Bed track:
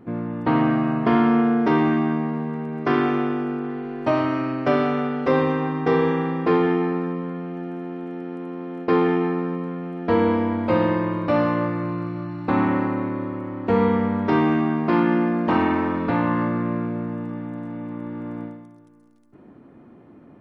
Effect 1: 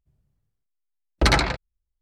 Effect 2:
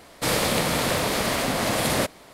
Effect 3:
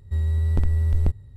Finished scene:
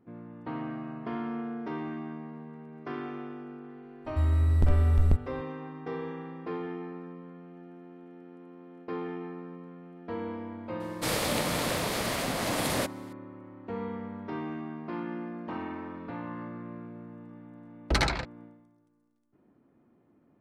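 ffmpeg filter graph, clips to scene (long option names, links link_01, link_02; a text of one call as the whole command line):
ffmpeg -i bed.wav -i cue0.wav -i cue1.wav -i cue2.wav -filter_complex "[0:a]volume=-17dB[link_01];[3:a]atrim=end=1.36,asetpts=PTS-STARTPTS,volume=-2dB,afade=type=in:duration=0.004:curve=hsin,afade=type=out:start_time=1.356:duration=0.004:curve=hsin,adelay=178605S[link_02];[2:a]atrim=end=2.33,asetpts=PTS-STARTPTS,volume=-6.5dB,afade=type=in:duration=0.004:curve=hsin,afade=type=out:start_time=2.326:duration=0.004:curve=hsin,adelay=10800[link_03];[1:a]atrim=end=2.01,asetpts=PTS-STARTPTS,volume=-7.5dB,afade=type=in:duration=0.004:curve=hsin,afade=type=out:start_time=2.006:duration=0.004:curve=hsin,adelay=16690[link_04];[link_01][link_02][link_03][link_04]amix=inputs=4:normalize=0" out.wav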